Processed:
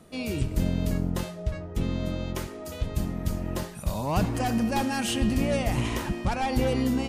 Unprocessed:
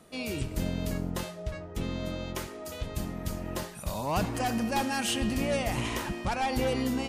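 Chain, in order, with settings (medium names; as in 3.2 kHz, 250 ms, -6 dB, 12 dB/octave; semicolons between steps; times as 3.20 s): bass shelf 330 Hz +7 dB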